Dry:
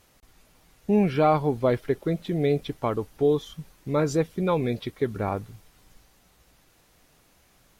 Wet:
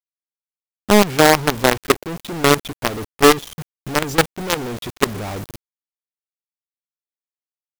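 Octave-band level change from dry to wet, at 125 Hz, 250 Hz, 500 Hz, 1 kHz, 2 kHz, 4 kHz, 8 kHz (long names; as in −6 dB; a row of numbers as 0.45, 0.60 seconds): +2.0, +5.0, +5.5, +9.5, +18.0, +19.5, +21.5 decibels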